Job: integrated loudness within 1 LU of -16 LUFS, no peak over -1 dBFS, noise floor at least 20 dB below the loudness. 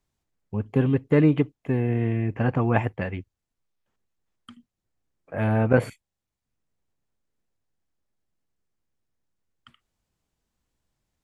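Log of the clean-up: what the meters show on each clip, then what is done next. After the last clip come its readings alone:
loudness -24.0 LUFS; peak -4.0 dBFS; loudness target -16.0 LUFS
-> gain +8 dB; limiter -1 dBFS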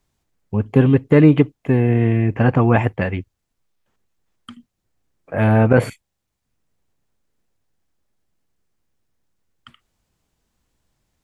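loudness -16.5 LUFS; peak -1.0 dBFS; noise floor -77 dBFS

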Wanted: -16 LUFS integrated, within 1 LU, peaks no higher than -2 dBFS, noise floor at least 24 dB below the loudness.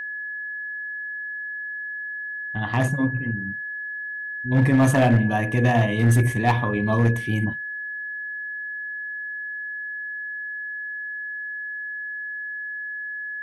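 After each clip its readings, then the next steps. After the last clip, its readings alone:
clipped 0.4%; flat tops at -11.5 dBFS; steady tone 1700 Hz; tone level -29 dBFS; loudness -25.0 LUFS; peak -11.5 dBFS; loudness target -16.0 LUFS
-> clip repair -11.5 dBFS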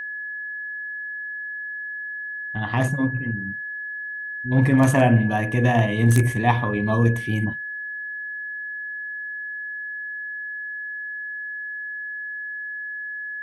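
clipped 0.0%; steady tone 1700 Hz; tone level -29 dBFS
-> notch 1700 Hz, Q 30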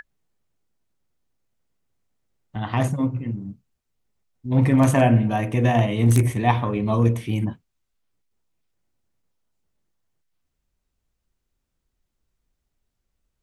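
steady tone none; loudness -21.0 LUFS; peak -3.0 dBFS; loudness target -16.0 LUFS
-> gain +5 dB; limiter -2 dBFS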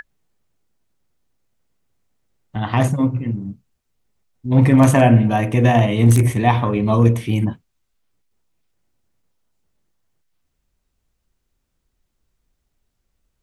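loudness -16.0 LUFS; peak -2.0 dBFS; noise floor -73 dBFS

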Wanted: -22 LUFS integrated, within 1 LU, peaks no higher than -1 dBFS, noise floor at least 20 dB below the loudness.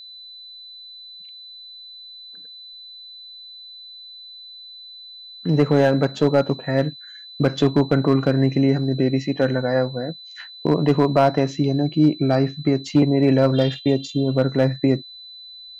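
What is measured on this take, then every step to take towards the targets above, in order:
clipped 0.7%; flat tops at -8.0 dBFS; steady tone 4000 Hz; tone level -38 dBFS; loudness -20.0 LUFS; peak -8.0 dBFS; loudness target -22.0 LUFS
-> clip repair -8 dBFS; notch 4000 Hz, Q 30; gain -2 dB

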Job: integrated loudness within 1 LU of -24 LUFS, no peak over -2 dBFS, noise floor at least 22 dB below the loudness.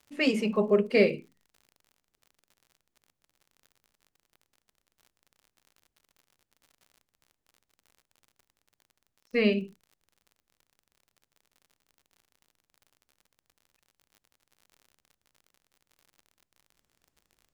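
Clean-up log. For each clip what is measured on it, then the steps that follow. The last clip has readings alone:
ticks 53/s; loudness -26.5 LUFS; peak -9.5 dBFS; loudness target -24.0 LUFS
-> de-click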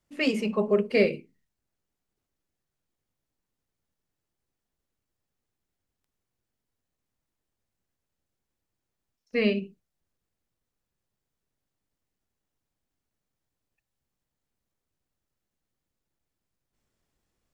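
ticks 0.057/s; loudness -26.0 LUFS; peak -9.5 dBFS; loudness target -24.0 LUFS
-> gain +2 dB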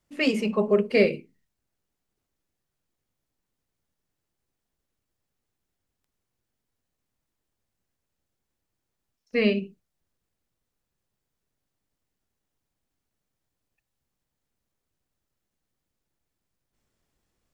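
loudness -24.0 LUFS; peak -7.5 dBFS; noise floor -83 dBFS

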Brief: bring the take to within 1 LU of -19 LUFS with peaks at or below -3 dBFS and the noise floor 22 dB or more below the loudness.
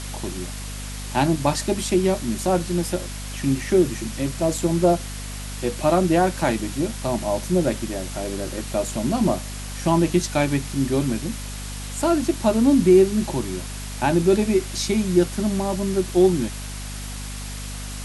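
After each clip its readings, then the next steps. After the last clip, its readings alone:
hum 50 Hz; harmonics up to 250 Hz; hum level -31 dBFS; noise floor -32 dBFS; noise floor target -44 dBFS; loudness -22.0 LUFS; peak -5.0 dBFS; loudness target -19.0 LUFS
-> notches 50/100/150/200/250 Hz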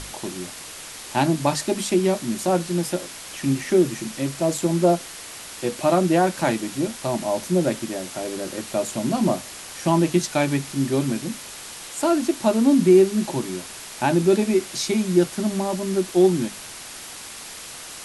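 hum none; noise floor -38 dBFS; noise floor target -44 dBFS
-> denoiser 6 dB, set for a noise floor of -38 dBFS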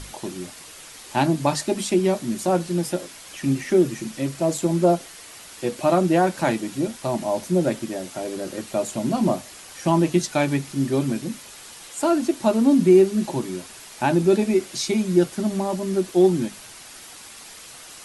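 noise floor -43 dBFS; noise floor target -44 dBFS
-> denoiser 6 dB, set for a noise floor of -43 dBFS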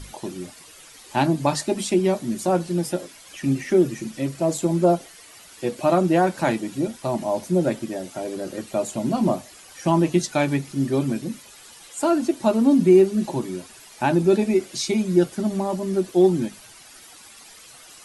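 noise floor -47 dBFS; loudness -22.5 LUFS; peak -5.5 dBFS; loudness target -19.0 LUFS
-> gain +3.5 dB; limiter -3 dBFS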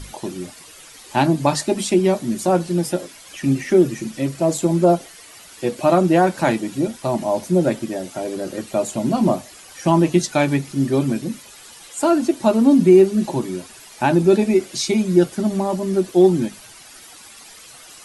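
loudness -19.0 LUFS; peak -3.0 dBFS; noise floor -43 dBFS

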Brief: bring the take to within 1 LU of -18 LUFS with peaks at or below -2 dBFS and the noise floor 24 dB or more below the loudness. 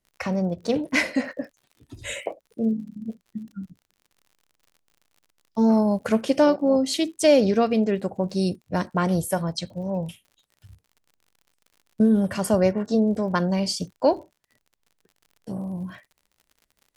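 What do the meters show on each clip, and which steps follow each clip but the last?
ticks 57/s; loudness -23.5 LUFS; peak -6.0 dBFS; loudness target -18.0 LUFS
-> de-click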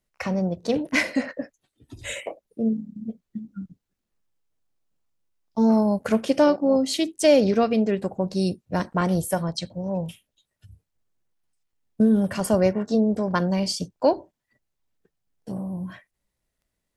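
ticks 0.24/s; loudness -23.5 LUFS; peak -6.0 dBFS; loudness target -18.0 LUFS
-> gain +5.5 dB; limiter -2 dBFS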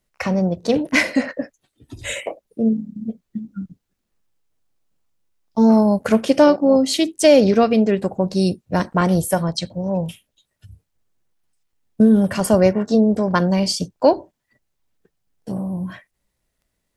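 loudness -18.0 LUFS; peak -2.0 dBFS; noise floor -76 dBFS

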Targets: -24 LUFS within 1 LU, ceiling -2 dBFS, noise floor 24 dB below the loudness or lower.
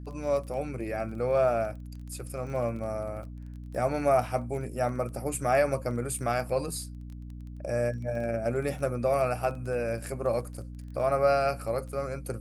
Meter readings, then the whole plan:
ticks 20/s; hum 60 Hz; harmonics up to 300 Hz; hum level -38 dBFS; loudness -29.5 LUFS; peak -13.0 dBFS; loudness target -24.0 LUFS
-> de-click; notches 60/120/180/240/300 Hz; gain +5.5 dB

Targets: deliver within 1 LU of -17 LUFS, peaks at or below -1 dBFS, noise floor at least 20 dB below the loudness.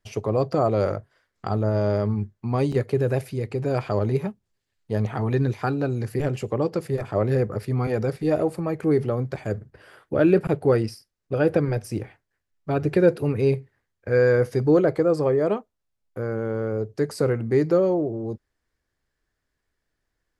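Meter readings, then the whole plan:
dropouts 1; longest dropout 4.6 ms; loudness -24.0 LUFS; peak -6.5 dBFS; loudness target -17.0 LUFS
-> interpolate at 2.72, 4.6 ms; gain +7 dB; limiter -1 dBFS

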